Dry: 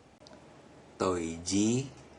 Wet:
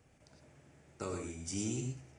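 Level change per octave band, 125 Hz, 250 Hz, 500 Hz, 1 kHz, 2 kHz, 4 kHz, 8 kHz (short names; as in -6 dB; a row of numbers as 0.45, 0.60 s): -3.0, -10.0, -10.0, -11.5, -7.0, -9.0, -5.0 dB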